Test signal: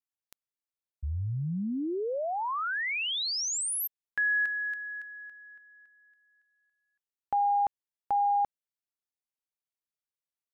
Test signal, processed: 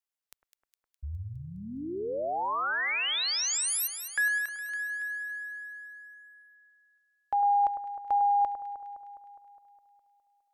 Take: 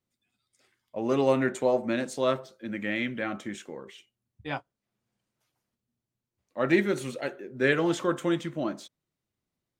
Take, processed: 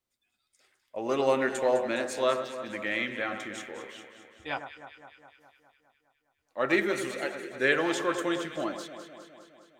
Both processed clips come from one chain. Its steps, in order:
parametric band 160 Hz −13 dB 1.9 octaves
on a send: delay that swaps between a low-pass and a high-pass 103 ms, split 1,700 Hz, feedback 79%, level −8.5 dB
on the sum: level +1.5 dB

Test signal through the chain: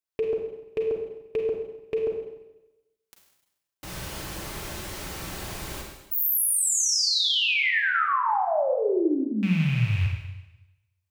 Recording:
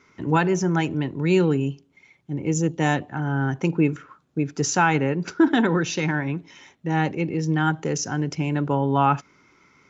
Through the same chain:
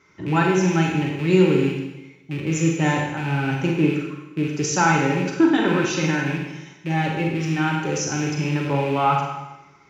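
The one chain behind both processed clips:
loose part that buzzes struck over −30 dBFS, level −24 dBFS
notch comb filter 240 Hz
four-comb reverb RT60 1 s, combs from 33 ms, DRR 0.5 dB

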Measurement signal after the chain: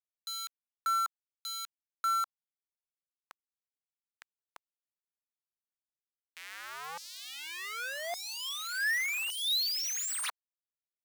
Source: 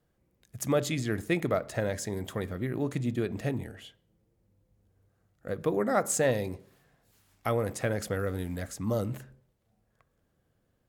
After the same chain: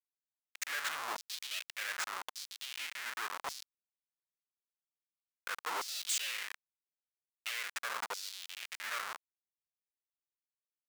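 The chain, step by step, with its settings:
low-pass filter 9,400 Hz 24 dB per octave
comparator with hysteresis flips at −33 dBFS
auto-filter high-pass saw down 0.86 Hz 890–5,300 Hz

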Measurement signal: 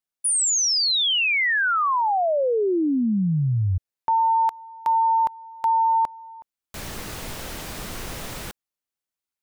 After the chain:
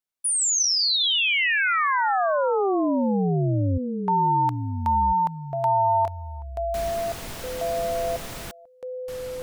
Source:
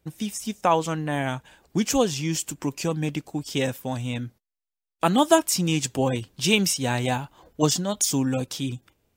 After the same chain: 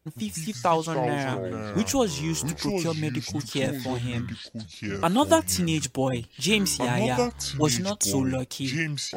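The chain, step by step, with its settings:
delay with pitch and tempo change per echo 83 ms, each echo −5 semitones, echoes 2, each echo −6 dB
level −2 dB

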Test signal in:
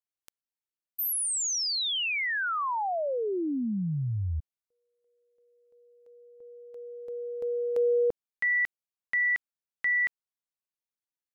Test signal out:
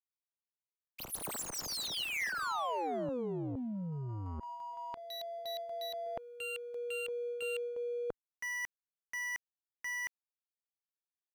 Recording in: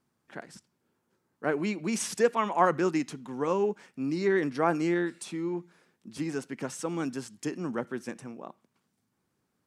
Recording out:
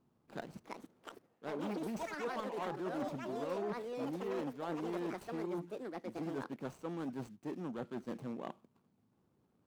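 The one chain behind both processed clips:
running median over 25 samples
reversed playback
downward compressor 16 to 1, threshold −40 dBFS
reversed playback
delay with pitch and tempo change per echo 445 ms, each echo +6 semitones, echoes 2
saturating transformer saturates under 670 Hz
level +4 dB

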